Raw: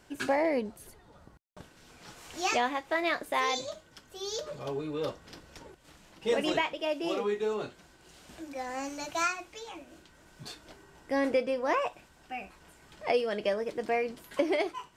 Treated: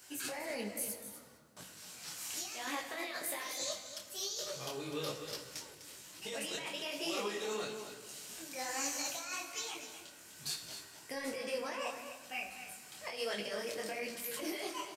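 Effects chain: high-pass 92 Hz 12 dB/octave; pre-emphasis filter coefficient 0.9; band-stop 3.5 kHz, Q 24; compressor with a negative ratio -48 dBFS, ratio -1; delay 251 ms -10.5 dB; on a send at -8 dB: reverberation RT60 1.8 s, pre-delay 3 ms; on the sum: detune thickener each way 39 cents; trim +12 dB

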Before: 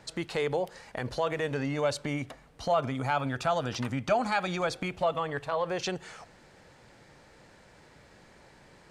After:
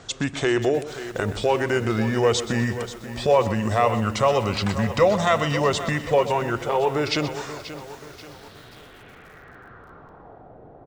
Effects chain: low-pass sweep 10 kHz -> 810 Hz, 6.40–8.69 s; tape speed -18%; on a send: feedback delay 125 ms, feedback 37%, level -14 dB; on the sum: bit-crushed delay 533 ms, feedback 55%, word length 8-bit, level -12.5 dB; trim +8 dB

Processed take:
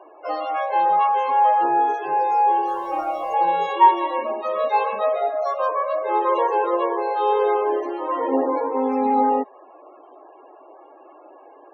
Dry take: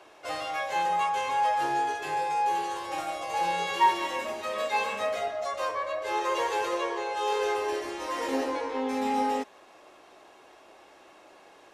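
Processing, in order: loudest bins only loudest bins 32; 2.66–3.34 s: added noise pink -56 dBFS; high-order bell 570 Hz +10.5 dB 2.8 oct; trim -1.5 dB

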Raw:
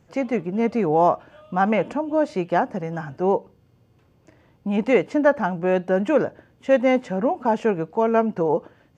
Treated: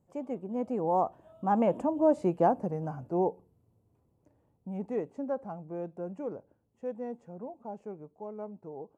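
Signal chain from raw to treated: Doppler pass-by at 2.17 s, 24 m/s, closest 17 m; high-order bell 2.8 kHz -13.5 dB 2.4 oct; trim -3 dB

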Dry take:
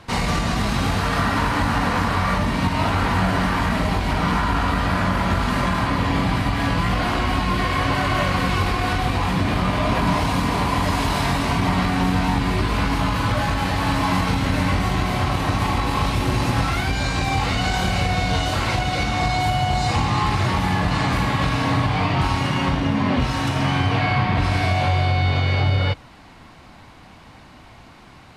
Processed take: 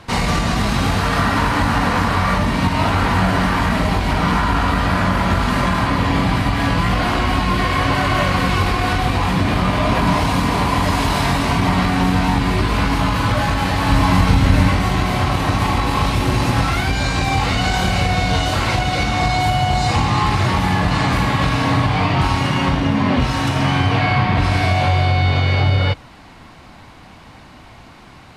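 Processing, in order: 13.90–14.69 s: bass shelf 110 Hz +10 dB; trim +3.5 dB

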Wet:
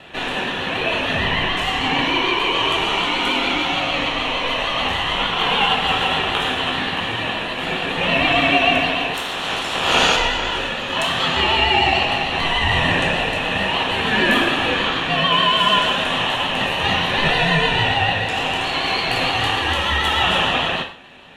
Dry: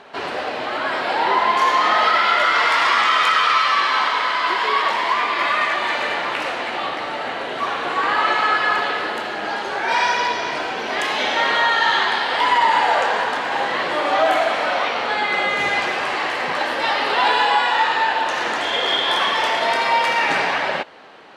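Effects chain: 9.13–10.15 s: spectral peaks clipped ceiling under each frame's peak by 20 dB; high-pass 850 Hz 24 dB/octave; band-stop 7.1 kHz, Q 30; gain riding within 4 dB 2 s; static phaser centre 1.1 kHz, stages 6; ring modulator 1 kHz; vibrato 6.7 Hz 59 cents; gated-style reverb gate 170 ms falling, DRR 3.5 dB; trim +6 dB

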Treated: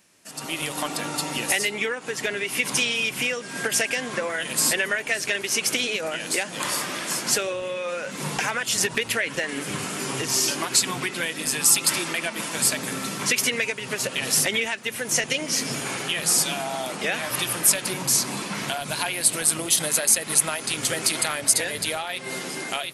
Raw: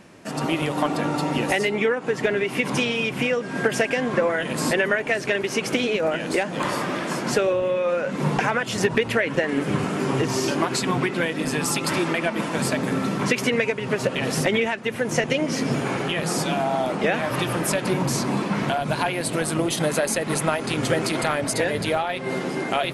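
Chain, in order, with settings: pre-emphasis filter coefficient 0.9; level rider gain up to 10.5 dB

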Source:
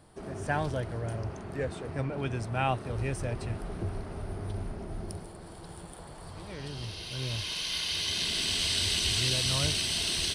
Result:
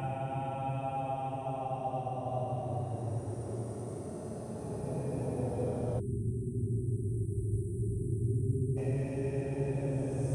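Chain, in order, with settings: peak limiter -25.5 dBFS, peak gain reduction 11.5 dB; high-pass 87 Hz; high-order bell 2.3 kHz -14.5 dB 2.4 oct; Paulstretch 20×, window 0.10 s, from 2.61 s; spectral selection erased 6.00–8.77 s, 430–7600 Hz; trim +2.5 dB

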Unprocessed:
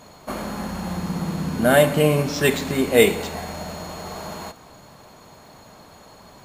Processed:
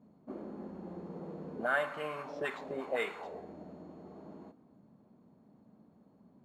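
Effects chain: auto-wah 210–1300 Hz, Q 2.6, up, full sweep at -14.5 dBFS; trim -6 dB

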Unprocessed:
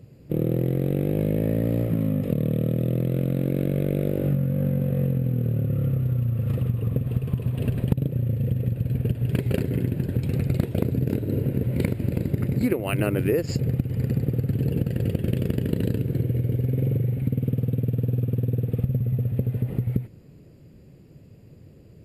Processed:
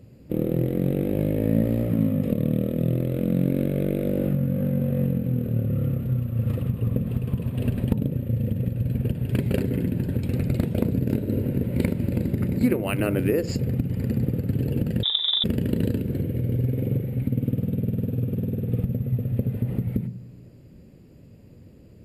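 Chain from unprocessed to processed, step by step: on a send at -14 dB: reverberation RT60 0.40 s, pre-delay 3 ms; 15.03–15.44 s: on the sum: frequency inversion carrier 3.7 kHz

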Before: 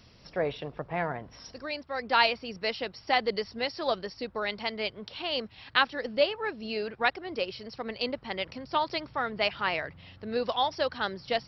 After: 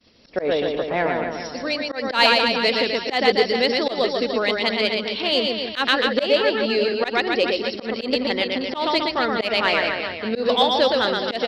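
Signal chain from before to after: expander -49 dBFS; graphic EQ 125/250/500/2000/4000 Hz -8/+10/+6/+4/+8 dB; reverse bouncing-ball echo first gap 120 ms, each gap 1.15×, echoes 5; in parallel at -5.5 dB: saturation -15 dBFS, distortion -13 dB; on the sum: slow attack 116 ms

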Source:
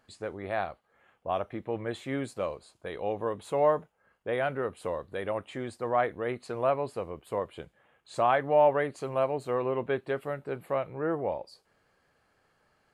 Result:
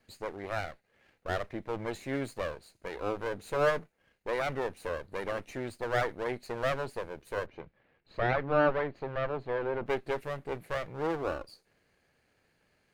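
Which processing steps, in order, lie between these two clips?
comb filter that takes the minimum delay 0.46 ms; 7.46–9.86 s: distance through air 310 m

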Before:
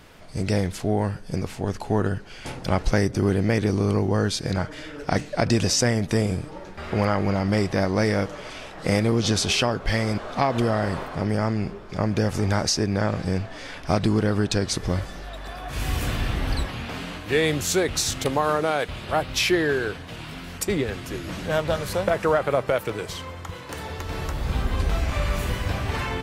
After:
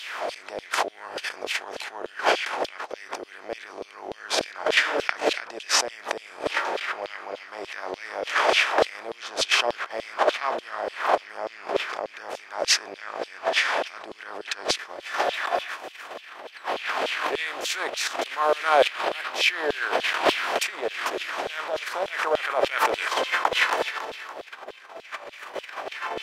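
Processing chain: spectral levelling over time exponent 0.6; gate with hold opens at -15 dBFS; tone controls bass +14 dB, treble -9 dB; compressor with a negative ratio -28 dBFS, ratio -1; resonant low shelf 230 Hz -10.5 dB, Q 1.5; LFO high-pass saw down 3.4 Hz 500–3500 Hz; trim +7 dB

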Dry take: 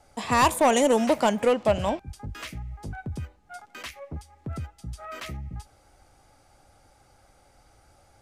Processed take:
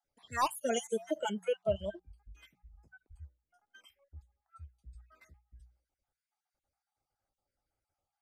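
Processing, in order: random holes in the spectrogram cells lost 37%; spectral noise reduction 21 dB; hum notches 60/120/180 Hz; trim -8 dB

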